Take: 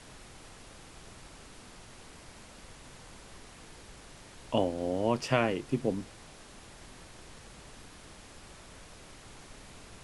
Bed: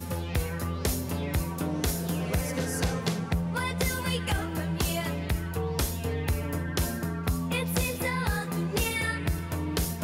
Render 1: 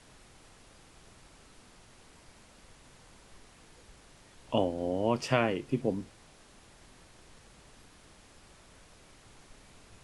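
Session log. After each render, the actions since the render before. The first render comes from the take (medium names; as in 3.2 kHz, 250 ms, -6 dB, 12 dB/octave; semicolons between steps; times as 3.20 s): noise print and reduce 6 dB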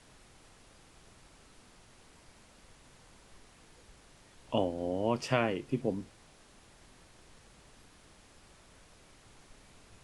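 trim -2 dB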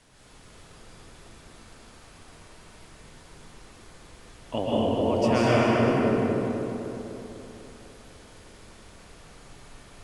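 on a send: filtered feedback delay 250 ms, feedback 60%, low-pass 2.4 kHz, level -4 dB; on the sum: plate-style reverb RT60 2.4 s, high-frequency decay 0.75×, pre-delay 110 ms, DRR -7 dB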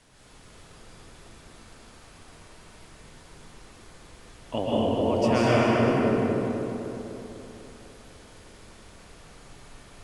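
no audible change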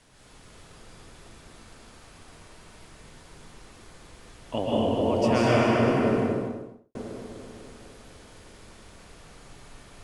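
6.15–6.95 s: studio fade out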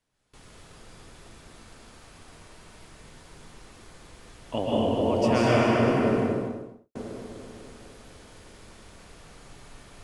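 gate with hold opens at -41 dBFS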